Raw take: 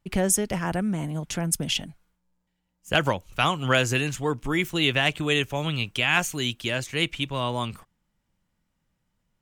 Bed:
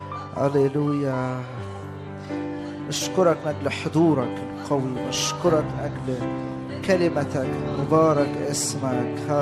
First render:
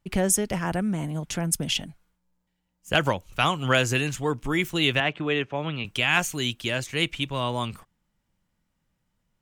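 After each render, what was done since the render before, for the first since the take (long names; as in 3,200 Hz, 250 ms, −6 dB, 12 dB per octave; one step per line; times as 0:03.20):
0:05.00–0:05.85: band-pass filter 160–2,400 Hz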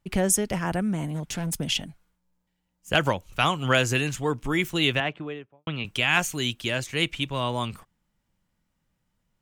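0:01.14–0:01.60: hard clipping −25.5 dBFS
0:04.83–0:05.67: fade out and dull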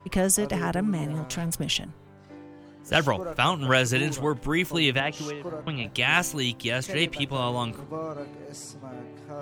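mix in bed −16 dB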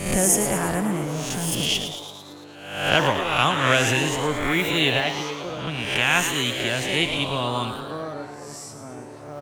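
peak hold with a rise ahead of every peak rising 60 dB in 0.80 s
echo with shifted repeats 112 ms, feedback 63%, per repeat +140 Hz, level −9 dB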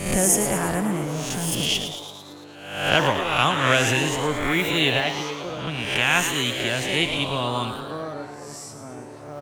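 no processing that can be heard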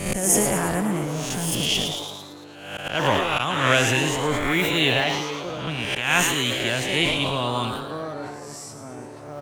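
volume swells 178 ms
level that may fall only so fast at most 37 dB per second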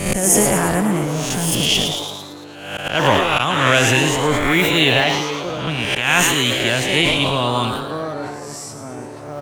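level +6 dB
brickwall limiter −2 dBFS, peak gain reduction 3 dB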